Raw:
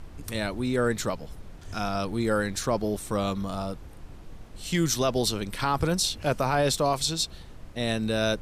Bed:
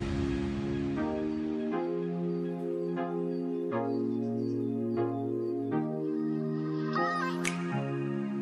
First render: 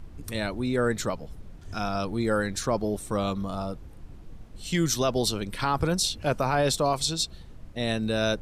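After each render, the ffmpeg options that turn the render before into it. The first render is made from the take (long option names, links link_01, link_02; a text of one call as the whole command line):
ffmpeg -i in.wav -af "afftdn=noise_reduction=6:noise_floor=-45" out.wav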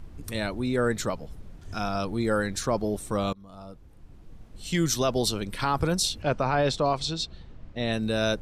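ffmpeg -i in.wav -filter_complex "[0:a]asettb=1/sr,asplit=3[link_01][link_02][link_03];[link_01]atrim=end=6.224[link_04];[link_02]atrim=start=6.22:end=7.93,asetpts=PTS-STARTPTS,afade=type=in:duration=0.004:curve=qsin,afade=type=out:start_time=1.706:duration=0.004:curve=qsin,lowpass=4500[link_05];[link_03]atrim=start=7.926[link_06];[link_04][link_05]acrossfade=duration=0.004:curve1=hsin:curve2=qsin[link_07];[link_07][link_06]acrossfade=duration=0.004:curve1=qsin:curve2=hsin,asplit=2[link_08][link_09];[link_08]atrim=end=3.33,asetpts=PTS-STARTPTS,afade=type=out:start_time=3.326:duration=0.004:curve=hsin:silence=0.0749894[link_10];[link_09]atrim=start=3.33,asetpts=PTS-STARTPTS,afade=type=in:duration=1.46:silence=0.0749894[link_11];[link_10][link_11]concat=n=2:v=0:a=1" out.wav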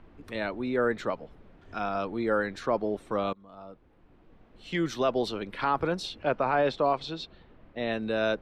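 ffmpeg -i in.wav -filter_complex "[0:a]acrossover=split=230 3400:gain=0.224 1 0.0631[link_01][link_02][link_03];[link_01][link_02][link_03]amix=inputs=3:normalize=0" out.wav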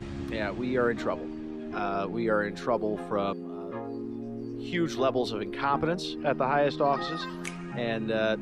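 ffmpeg -i in.wav -i bed.wav -filter_complex "[1:a]volume=-5dB[link_01];[0:a][link_01]amix=inputs=2:normalize=0" out.wav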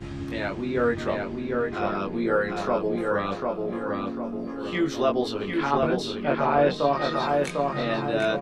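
ffmpeg -i in.wav -filter_complex "[0:a]asplit=2[link_01][link_02];[link_02]adelay=21,volume=-2dB[link_03];[link_01][link_03]amix=inputs=2:normalize=0,asplit=2[link_04][link_05];[link_05]adelay=749,lowpass=frequency=3600:poles=1,volume=-3dB,asplit=2[link_06][link_07];[link_07]adelay=749,lowpass=frequency=3600:poles=1,volume=0.44,asplit=2[link_08][link_09];[link_09]adelay=749,lowpass=frequency=3600:poles=1,volume=0.44,asplit=2[link_10][link_11];[link_11]adelay=749,lowpass=frequency=3600:poles=1,volume=0.44,asplit=2[link_12][link_13];[link_13]adelay=749,lowpass=frequency=3600:poles=1,volume=0.44,asplit=2[link_14][link_15];[link_15]adelay=749,lowpass=frequency=3600:poles=1,volume=0.44[link_16];[link_04][link_06][link_08][link_10][link_12][link_14][link_16]amix=inputs=7:normalize=0" out.wav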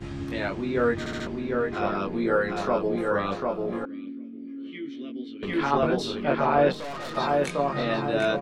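ffmpeg -i in.wav -filter_complex "[0:a]asettb=1/sr,asplit=3[link_01][link_02][link_03];[link_01]atrim=end=3.854[link_04];[link_02]atrim=start=3.85:end=5.43,asetpts=PTS-STARTPTS,afade=type=in:duration=0.004:curve=qsin,afade=type=out:start_time=1.576:duration=0.004:curve=qsin,asplit=3[link_05][link_06][link_07];[link_05]bandpass=frequency=270:width_type=q:width=8,volume=0dB[link_08];[link_06]bandpass=frequency=2290:width_type=q:width=8,volume=-6dB[link_09];[link_07]bandpass=frequency=3010:width_type=q:width=8,volume=-9dB[link_10];[link_08][link_09][link_10]amix=inputs=3:normalize=0[link_11];[link_03]atrim=start=5.426[link_12];[link_04][link_11]acrossfade=duration=0.004:curve1=hsin:curve2=qsin[link_13];[link_13][link_12]acrossfade=duration=0.004:curve1=qsin:curve2=hsin,asettb=1/sr,asplit=3[link_14][link_15][link_16];[link_14]atrim=end=6.724[link_17];[link_15]atrim=start=6.72:end=7.17,asetpts=PTS-STARTPTS,afade=type=in:duration=0.004:curve=qsin,afade=type=out:start_time=0.446:duration=0.004:curve=qsin,aeval=exprs='(tanh(44.7*val(0)+0.35)-tanh(0.35))/44.7':channel_layout=same[link_18];[link_16]atrim=start=7.166[link_19];[link_17][link_18]acrossfade=duration=0.004:curve1=hsin:curve2=qsin[link_20];[link_20][link_19]acrossfade=duration=0.004:curve1=qsin:curve2=hsin,asplit=5[link_21][link_22][link_23][link_24][link_25];[link_21]atrim=end=1.062[link_26];[link_22]atrim=start=0.988:end=1.062[link_27];[link_23]atrim=start=0.988:end=1.062[link_28];[link_24]atrim=start=0.988:end=1.062[link_29];[link_25]atrim=start=1.268[link_30];[link_26][link_27]acrossfade=duration=0.004:curve1=hsin:curve2=hsin[link_31];[link_31][link_28]acrossfade=duration=0.004:curve1=hsin:curve2=hsin[link_32];[link_32][link_29]acrossfade=duration=0.004:curve1=hsin:curve2=hsin[link_33];[link_33][link_30]acrossfade=duration=0.004:curve1=hsin:curve2=hsin" out.wav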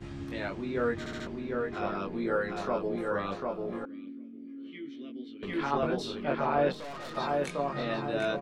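ffmpeg -i in.wav -af "volume=-6dB" out.wav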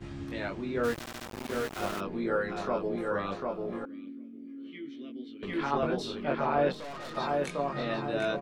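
ffmpeg -i in.wav -filter_complex "[0:a]asplit=3[link_01][link_02][link_03];[link_01]afade=type=out:start_time=0.83:duration=0.02[link_04];[link_02]aeval=exprs='val(0)*gte(abs(val(0)),0.0211)':channel_layout=same,afade=type=in:start_time=0.83:duration=0.02,afade=type=out:start_time=1.99:duration=0.02[link_05];[link_03]afade=type=in:start_time=1.99:duration=0.02[link_06];[link_04][link_05][link_06]amix=inputs=3:normalize=0" out.wav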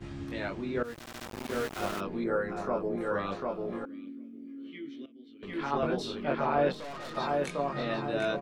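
ffmpeg -i in.wav -filter_complex "[0:a]asettb=1/sr,asplit=3[link_01][link_02][link_03];[link_01]atrim=end=2.244[link_04];[link_02]atrim=start=2.24:end=3.01,asetpts=PTS-STARTPTS,afade=type=in:duration=0.004:curve=qsin,afade=type=out:start_time=0.766:duration=0.004:curve=qsin,equalizer=frequency=3500:width=1.2:gain=-11.5[link_05];[link_03]atrim=start=3.006[link_06];[link_04][link_05]acrossfade=duration=0.004:curve1=hsin:curve2=qsin[link_07];[link_07][link_06]acrossfade=duration=0.004:curve1=qsin:curve2=hsin,asplit=3[link_08][link_09][link_10];[link_08]atrim=end=0.83,asetpts=PTS-STARTPTS,afade=type=out:start_time=0.826:duration=0.004:curve=hsin:silence=0.141254[link_11];[link_09]atrim=start=0.83:end=5.06,asetpts=PTS-STARTPTS,afade=type=in:duration=0.41:silence=0.141254,afade=type=out:start_time=4.226:duration=0.004:curve=hsin:silence=0.158489[link_12];[link_10]atrim=start=5.06,asetpts=PTS-STARTPTS,afade=type=in:duration=0.81:silence=0.158489[link_13];[link_11][link_12][link_13]concat=n=3:v=0:a=1" out.wav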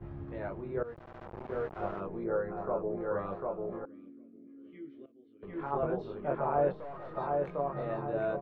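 ffmpeg -i in.wav -af "lowpass=1000,equalizer=frequency=250:width_type=o:width=0.45:gain=-13" out.wav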